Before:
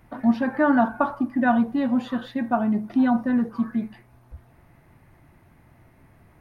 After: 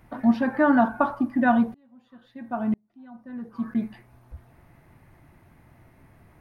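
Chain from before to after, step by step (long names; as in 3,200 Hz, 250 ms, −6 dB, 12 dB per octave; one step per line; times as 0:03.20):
0:01.74–0:03.75: tremolo with a ramp in dB swelling 1 Hz, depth 39 dB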